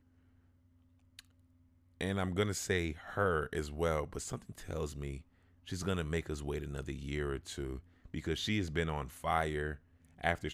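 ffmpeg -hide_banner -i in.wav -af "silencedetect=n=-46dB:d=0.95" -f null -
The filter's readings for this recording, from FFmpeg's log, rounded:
silence_start: 0.00
silence_end: 1.19 | silence_duration: 1.19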